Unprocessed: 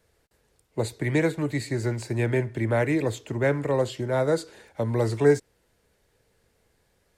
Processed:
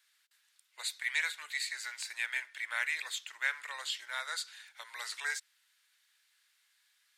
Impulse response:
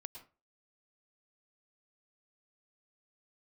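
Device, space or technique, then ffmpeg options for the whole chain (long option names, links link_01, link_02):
headphones lying on a table: -af "highpass=frequency=1400:width=0.5412,highpass=frequency=1400:width=1.3066,equalizer=frequency=3600:width_type=o:width=0.6:gain=5.5"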